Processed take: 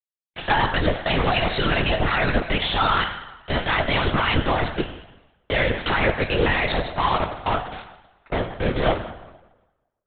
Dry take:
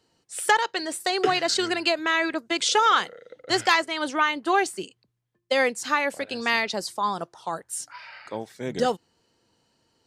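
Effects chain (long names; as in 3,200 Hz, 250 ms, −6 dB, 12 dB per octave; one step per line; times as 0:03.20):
output level in coarse steps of 17 dB
fuzz pedal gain 35 dB, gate −42 dBFS
power curve on the samples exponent 2
on a send at −3 dB: convolution reverb RT60 1.1 s, pre-delay 5 ms
on the sum: linear-prediction vocoder at 8 kHz whisper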